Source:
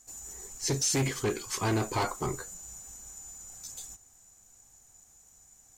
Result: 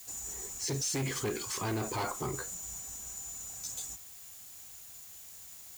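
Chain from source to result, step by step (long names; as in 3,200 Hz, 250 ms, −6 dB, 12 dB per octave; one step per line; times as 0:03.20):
high-pass filter 49 Hz
brickwall limiter −29.5 dBFS, peak gain reduction 9.5 dB
background noise blue −54 dBFS
level +3 dB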